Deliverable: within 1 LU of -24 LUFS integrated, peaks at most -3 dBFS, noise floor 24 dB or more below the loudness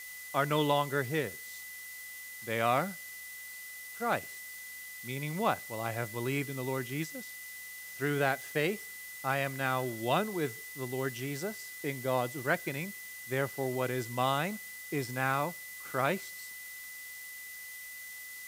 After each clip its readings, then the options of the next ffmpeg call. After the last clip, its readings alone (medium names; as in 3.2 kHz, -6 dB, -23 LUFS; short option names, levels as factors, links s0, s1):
steady tone 2 kHz; tone level -45 dBFS; noise floor -46 dBFS; noise floor target -59 dBFS; loudness -34.5 LUFS; peak level -13.5 dBFS; loudness target -24.0 LUFS
-> -af "bandreject=f=2000:w=30"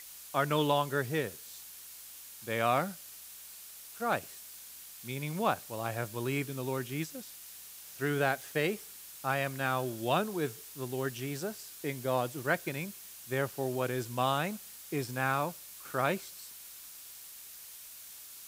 steady tone not found; noise floor -49 dBFS; noise floor target -58 dBFS
-> -af "afftdn=nr=9:nf=-49"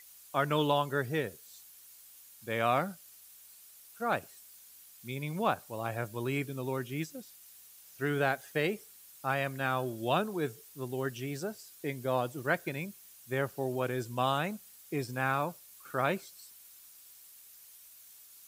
noise floor -55 dBFS; noise floor target -58 dBFS
-> -af "afftdn=nr=6:nf=-55"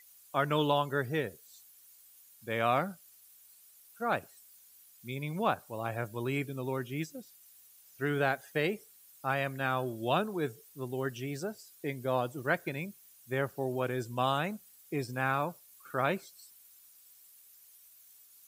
noise floor -59 dBFS; loudness -33.5 LUFS; peak level -14.0 dBFS; loudness target -24.0 LUFS
-> -af "volume=2.99"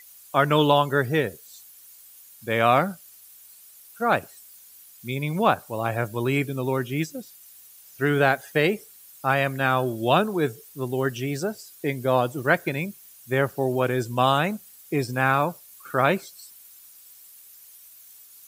loudness -24.0 LUFS; peak level -4.5 dBFS; noise floor -50 dBFS